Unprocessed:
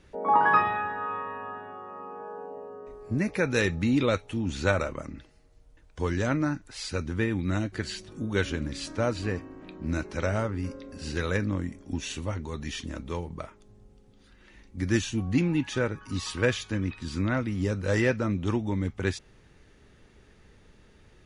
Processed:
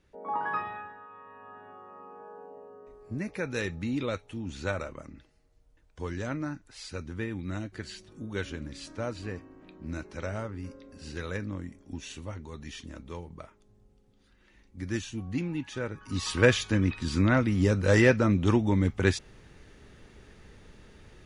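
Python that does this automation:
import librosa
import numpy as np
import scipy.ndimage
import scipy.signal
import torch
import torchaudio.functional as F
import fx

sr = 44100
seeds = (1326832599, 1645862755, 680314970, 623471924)

y = fx.gain(x, sr, db=fx.line((0.78, -10.5), (1.09, -17.5), (1.69, -7.0), (15.8, -7.0), (16.38, 4.0)))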